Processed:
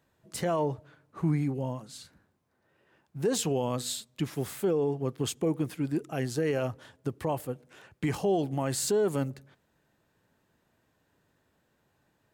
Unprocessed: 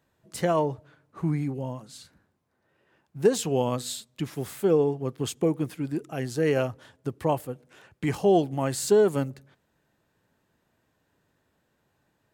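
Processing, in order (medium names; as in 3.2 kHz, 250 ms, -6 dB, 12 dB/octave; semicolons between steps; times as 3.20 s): peak limiter -19 dBFS, peak gain reduction 9 dB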